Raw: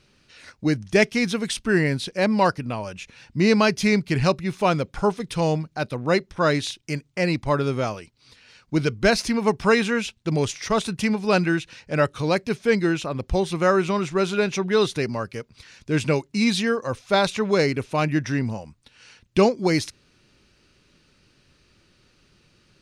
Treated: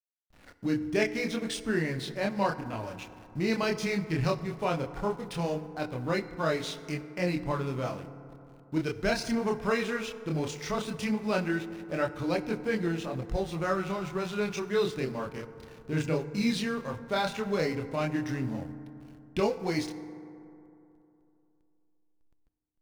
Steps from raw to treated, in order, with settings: in parallel at +2 dB: compression, threshold -30 dBFS, peak gain reduction 17 dB; on the sum: added noise pink -49 dBFS; chorus voices 2, 0.16 Hz, delay 27 ms, depth 4.3 ms; hysteresis with a dead band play -33 dBFS; FDN reverb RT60 2.9 s, high-frequency decay 0.35×, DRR 11.5 dB; trim -8 dB

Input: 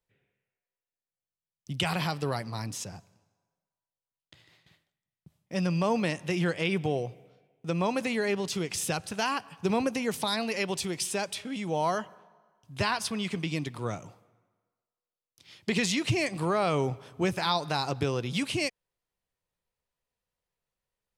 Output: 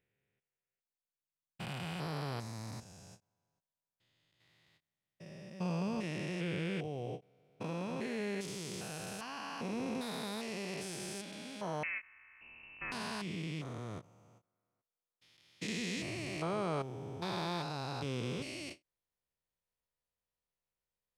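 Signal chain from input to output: spectrogram pixelated in time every 400 ms; 11.83–12.92 s: frequency inversion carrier 2.8 kHz; endings held to a fixed fall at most 380 dB/s; trim -5.5 dB

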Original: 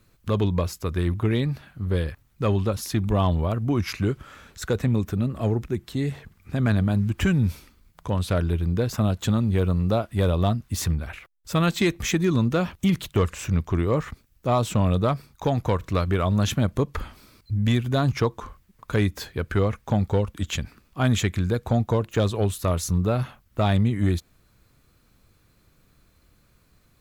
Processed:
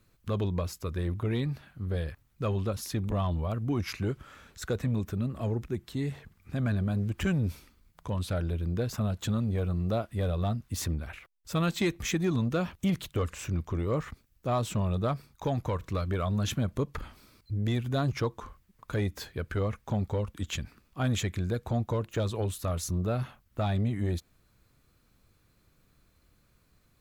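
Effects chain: transformer saturation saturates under 160 Hz; trim -5.5 dB

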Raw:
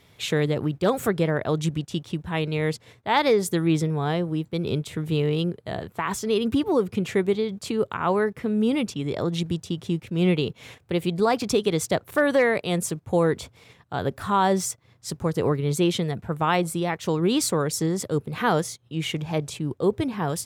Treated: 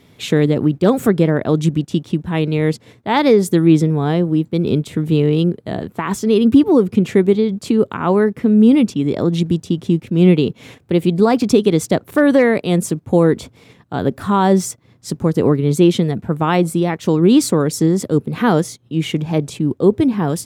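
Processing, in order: peaking EQ 250 Hz +10.5 dB 1.5 oct; trim +3 dB

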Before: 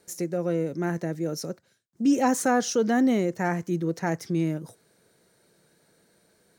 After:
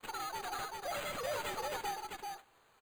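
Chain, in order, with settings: frequency axis rescaled in octaves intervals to 114%; Chebyshev high-pass 200 Hz, order 4; peaking EQ 8.1 kHz +8 dB 0.21 oct; in parallel at +1 dB: compression, threshold -38 dBFS, peak gain reduction 18 dB; on the sum: valve stage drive 31 dB, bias 0.35; vibrato 1.6 Hz 84 cents; sample-and-hold 19×; delay 913 ms -3 dB; on a send at -15.5 dB: reverberation RT60 0.95 s, pre-delay 3 ms; on the sum: speed mistake 33 rpm record played at 78 rpm; trim -6.5 dB

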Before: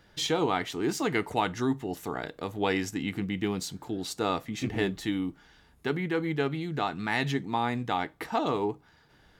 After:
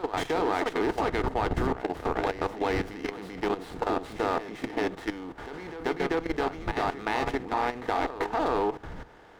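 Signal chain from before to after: spectral levelling over time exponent 0.6; wind noise 82 Hz -27 dBFS; in parallel at -2 dB: compression 5:1, threshold -29 dBFS, peak gain reduction 16.5 dB; on the sum: tone controls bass -15 dB, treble -5 dB; reverse echo 389 ms -4.5 dB; level held to a coarse grid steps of 13 dB; treble shelf 2.2 kHz -10.5 dB; sliding maximum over 5 samples; trim +1.5 dB

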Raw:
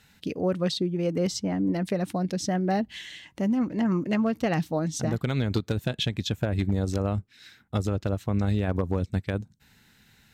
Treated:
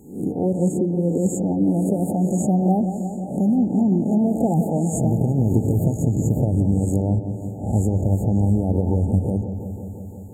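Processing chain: reverse spectral sustain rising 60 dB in 0.50 s; dynamic bell 580 Hz, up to -7 dB, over -40 dBFS, Q 1.2; brick-wall FIR band-stop 910–6600 Hz; bucket-brigade echo 173 ms, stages 4096, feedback 77%, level -10 dB; trim +7 dB

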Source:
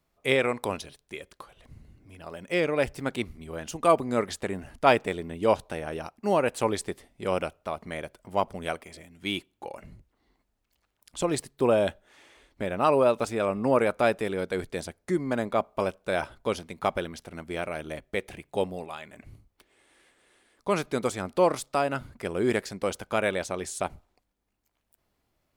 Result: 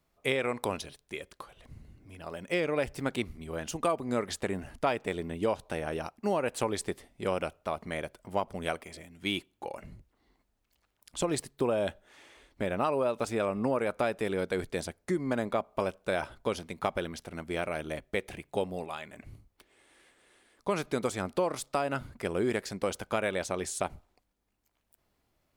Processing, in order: compression, threshold -25 dBFS, peak gain reduction 11 dB

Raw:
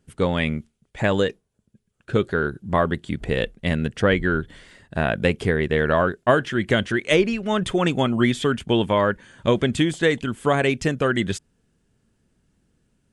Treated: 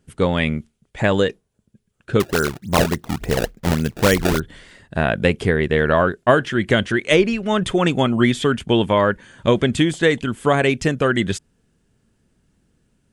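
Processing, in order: 2.20–4.40 s: decimation with a swept rate 24×, swing 160% 3.5 Hz; trim +3 dB

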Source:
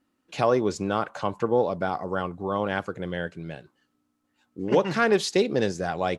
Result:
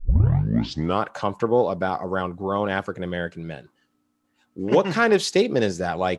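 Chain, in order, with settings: tape start-up on the opening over 1.02 s; trim +3 dB

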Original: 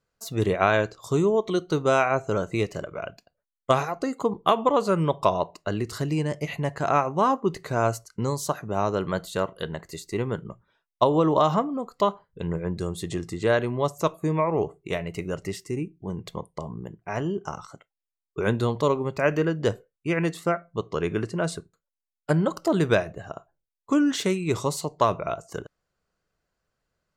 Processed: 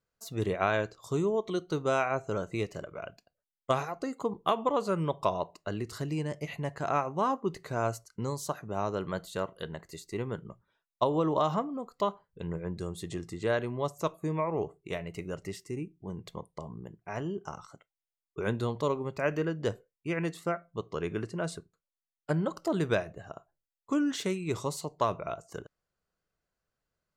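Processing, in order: 21.58–22.58 s: treble shelf 11 kHz -9 dB; trim -7 dB

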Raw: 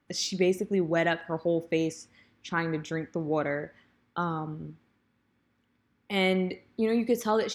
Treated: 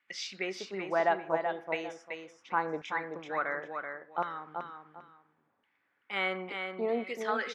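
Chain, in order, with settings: LFO band-pass saw down 0.71 Hz 670–2300 Hz; multi-tap echo 381/779 ms -6/-18.5 dB; trim +6 dB

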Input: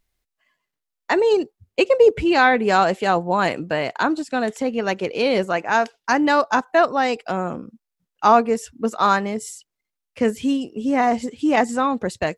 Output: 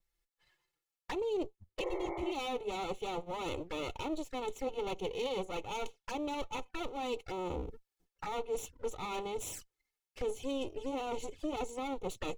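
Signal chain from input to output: comb filter that takes the minimum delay 2.3 ms; recorder AGC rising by 11 dB/s; spectral replace 1.84–2.29 s, 330–2300 Hz both; reverse; compression 5:1, threshold -27 dBFS, peak gain reduction 14 dB; reverse; touch-sensitive flanger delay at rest 6 ms, full sweep at -29 dBFS; trim -5.5 dB

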